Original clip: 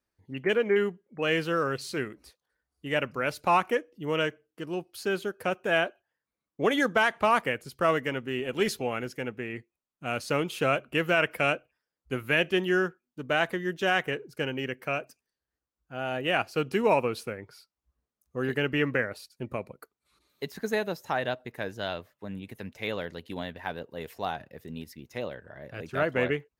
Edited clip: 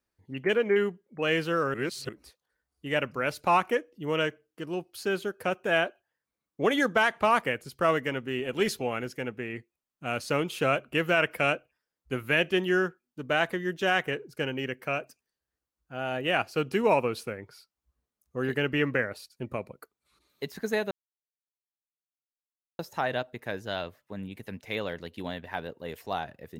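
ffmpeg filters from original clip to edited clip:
-filter_complex "[0:a]asplit=4[a][b][c][d];[a]atrim=end=1.742[e];[b]atrim=start=1.738:end=2.092,asetpts=PTS-STARTPTS,areverse[f];[c]atrim=start=2.088:end=20.91,asetpts=PTS-STARTPTS,afade=t=out:st=18.818:d=0.004:c=hsin,apad=pad_dur=1.88[g];[d]atrim=start=20.91,asetpts=PTS-STARTPTS,afade=t=in:d=0.004:c=hsin[h];[e][f]acrossfade=d=0.004:c1=hsin:c2=hsin[i];[g][h]concat=n=2:v=0:a=1[j];[i][j]acrossfade=d=0.004:c1=hsin:c2=hsin"

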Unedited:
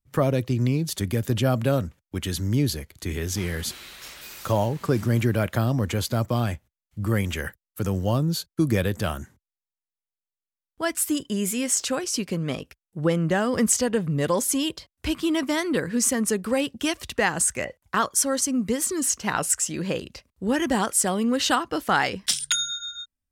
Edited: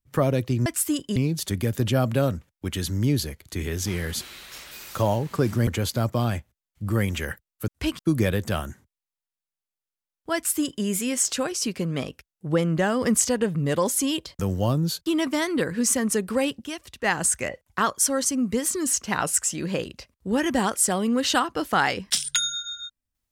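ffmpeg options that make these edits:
-filter_complex "[0:a]asplit=10[a][b][c][d][e][f][g][h][i][j];[a]atrim=end=0.662[k];[b]atrim=start=10.868:end=11.372[l];[c]atrim=start=0.658:end=5.172[m];[d]atrim=start=5.828:end=7.842[n];[e]atrim=start=14.908:end=15.222[o];[f]atrim=start=8.508:end=14.912[p];[g]atrim=start=7.838:end=8.512[q];[h]atrim=start=15.218:end=16.8,asetpts=PTS-STARTPTS,afade=t=out:st=1.432:d=0.15:c=log:silence=0.375837[r];[i]atrim=start=16.8:end=17.2,asetpts=PTS-STARTPTS,volume=-8.5dB[s];[j]atrim=start=17.2,asetpts=PTS-STARTPTS,afade=t=in:d=0.15:c=log:silence=0.375837[t];[k][l]acrossfade=d=0.004:c1=hsin:c2=hsin[u];[u][m]acrossfade=d=0.004:c1=hsin:c2=hsin[v];[v][n]acrossfade=d=0.004:c1=hsin:c2=hsin[w];[w][o]acrossfade=d=0.004:c1=hsin:c2=hsin[x];[x][p]acrossfade=d=0.004:c1=hsin:c2=hsin[y];[y][q]acrossfade=d=0.004:c1=hsin:c2=hsin[z];[r][s][t]concat=n=3:v=0:a=1[aa];[z][aa]acrossfade=d=0.004:c1=hsin:c2=hsin"

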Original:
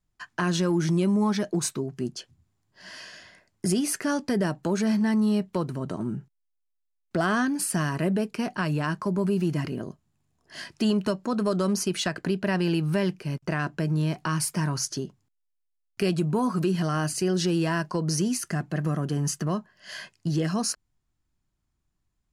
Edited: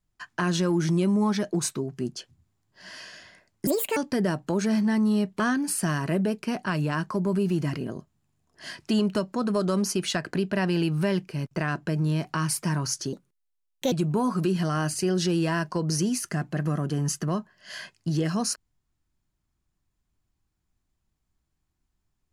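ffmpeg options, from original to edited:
-filter_complex "[0:a]asplit=6[a][b][c][d][e][f];[a]atrim=end=3.674[g];[b]atrim=start=3.67:end=4.13,asetpts=PTS-STARTPTS,asetrate=68355,aresample=44100[h];[c]atrim=start=4.126:end=5.562[i];[d]atrim=start=7.308:end=15.044[j];[e]atrim=start=15.04:end=16.11,asetpts=PTS-STARTPTS,asetrate=59535,aresample=44100,atrim=end_sample=34953,asetpts=PTS-STARTPTS[k];[f]atrim=start=16.106[l];[g][h]acrossfade=d=0.004:c1=hsin:c2=hsin[m];[m][i]acrossfade=d=0.004:c1=hsin:c2=hsin[n];[n][j]acrossfade=d=0.004:c1=hsin:c2=hsin[o];[o][k]acrossfade=d=0.004:c1=hsin:c2=hsin[p];[p][l]acrossfade=d=0.004:c1=hsin:c2=hsin"

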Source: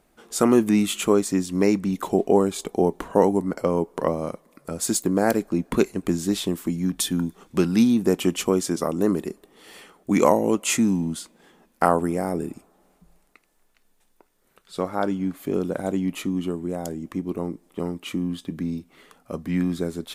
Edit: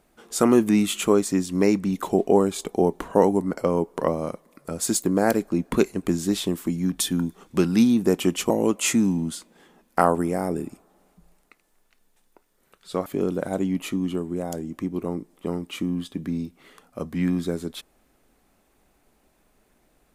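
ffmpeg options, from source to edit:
-filter_complex "[0:a]asplit=3[a][b][c];[a]atrim=end=8.502[d];[b]atrim=start=10.338:end=14.902[e];[c]atrim=start=15.388[f];[d][e]acrossfade=d=0.004:c1=hsin:c2=hsin[g];[g][f]acrossfade=d=0.004:c1=hsin:c2=hsin"

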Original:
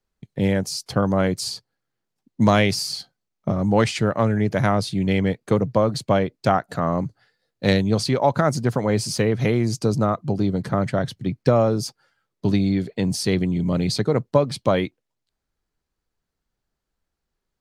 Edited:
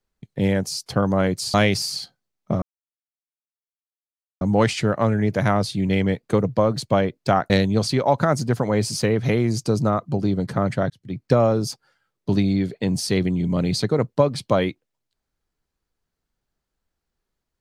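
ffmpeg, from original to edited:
-filter_complex "[0:a]asplit=5[a][b][c][d][e];[a]atrim=end=1.542[f];[b]atrim=start=2.508:end=3.59,asetpts=PTS-STARTPTS,afade=t=out:st=1.078:d=0.004:c=hsin,apad=pad_dur=1.79[g];[c]atrim=start=3.59:end=6.682,asetpts=PTS-STARTPTS,afade=t=in:d=0.004:c=hsin[h];[d]atrim=start=7.658:end=11.06,asetpts=PTS-STARTPTS,afade=t=out:st=3.398:d=0.004:c=hsin[i];[e]atrim=start=11.06,asetpts=PTS-STARTPTS,afade=t=in:d=0.41[j];[g][h]concat=n=2:v=0:a=1[k];[f][k]acrossfade=d=0.004:c1=hsin:c2=hsin[l];[i][j]concat=n=2:v=0:a=1[m];[l][m]acrossfade=d=0.004:c1=hsin:c2=hsin"

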